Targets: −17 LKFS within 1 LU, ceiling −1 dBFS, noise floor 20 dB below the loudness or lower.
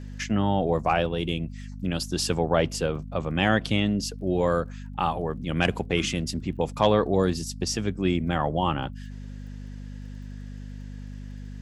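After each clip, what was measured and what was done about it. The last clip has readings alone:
crackle rate 22 per second; mains hum 50 Hz; hum harmonics up to 250 Hz; level of the hum −36 dBFS; integrated loudness −26.0 LKFS; sample peak −6.5 dBFS; target loudness −17.0 LKFS
→ click removal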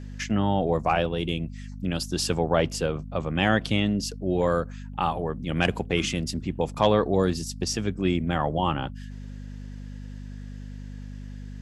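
crackle rate 0 per second; mains hum 50 Hz; hum harmonics up to 250 Hz; level of the hum −36 dBFS
→ hum removal 50 Hz, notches 5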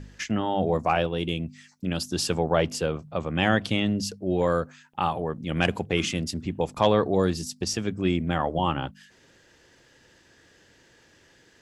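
mains hum none found; integrated loudness −26.5 LKFS; sample peak −6.0 dBFS; target loudness −17.0 LKFS
→ level +9.5 dB
brickwall limiter −1 dBFS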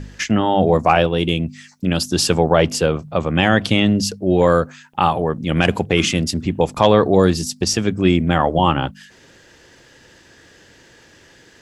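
integrated loudness −17.5 LKFS; sample peak −1.0 dBFS; background noise floor −49 dBFS

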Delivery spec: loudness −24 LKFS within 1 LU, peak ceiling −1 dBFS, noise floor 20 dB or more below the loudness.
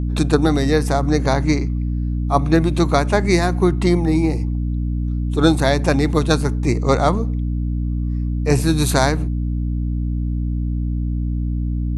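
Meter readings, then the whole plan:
mains hum 60 Hz; hum harmonics up to 300 Hz; level of the hum −18 dBFS; integrated loudness −19.0 LKFS; sample peak −1.0 dBFS; target loudness −24.0 LKFS
→ hum removal 60 Hz, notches 5
level −5 dB

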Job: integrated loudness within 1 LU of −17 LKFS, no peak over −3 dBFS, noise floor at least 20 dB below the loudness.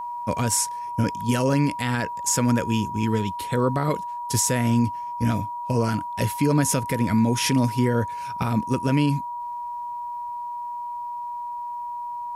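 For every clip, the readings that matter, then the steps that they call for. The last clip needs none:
interfering tone 960 Hz; level of the tone −29 dBFS; integrated loudness −24.5 LKFS; sample peak −10.5 dBFS; target loudness −17.0 LKFS
→ notch filter 960 Hz, Q 30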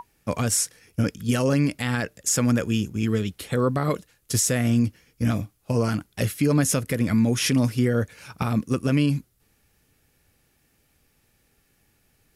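interfering tone none found; integrated loudness −24.0 LKFS; sample peak −11.5 dBFS; target loudness −17.0 LKFS
→ level +7 dB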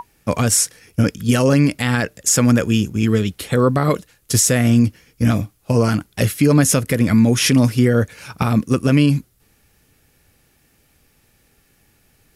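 integrated loudness −17.0 LKFS; sample peak −4.5 dBFS; background noise floor −60 dBFS

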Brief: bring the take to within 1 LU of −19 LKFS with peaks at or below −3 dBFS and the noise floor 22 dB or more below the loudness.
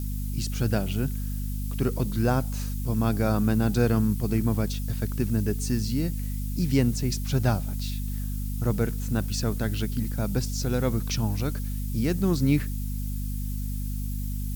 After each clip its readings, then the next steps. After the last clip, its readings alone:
mains hum 50 Hz; hum harmonics up to 250 Hz; level of the hum −27 dBFS; background noise floor −30 dBFS; target noise floor −50 dBFS; integrated loudness −27.5 LKFS; sample peak −9.0 dBFS; target loudness −19.0 LKFS
→ mains-hum notches 50/100/150/200/250 Hz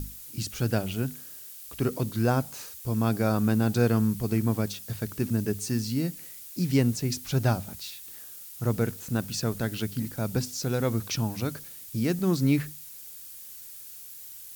mains hum none found; background noise floor −44 dBFS; target noise floor −51 dBFS
→ noise reduction from a noise print 7 dB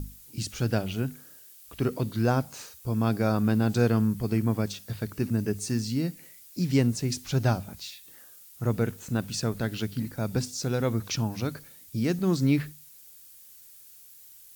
background noise floor −51 dBFS; integrated loudness −28.5 LKFS; sample peak −10.0 dBFS; target loudness −19.0 LKFS
→ level +9.5 dB
brickwall limiter −3 dBFS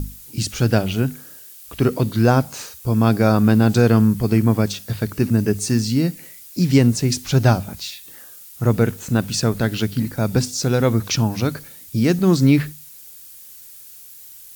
integrated loudness −19.0 LKFS; sample peak −3.0 dBFS; background noise floor −42 dBFS

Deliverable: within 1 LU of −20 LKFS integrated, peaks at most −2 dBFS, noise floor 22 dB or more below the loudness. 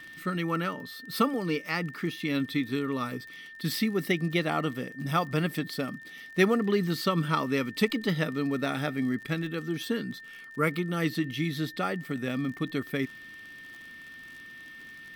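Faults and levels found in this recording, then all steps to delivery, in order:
crackle rate 40 per second; interfering tone 1,800 Hz; level of the tone −44 dBFS; integrated loudness −30.0 LKFS; sample peak −10.5 dBFS; target loudness −20.0 LKFS
→ click removal
notch filter 1,800 Hz, Q 30
level +10 dB
brickwall limiter −2 dBFS

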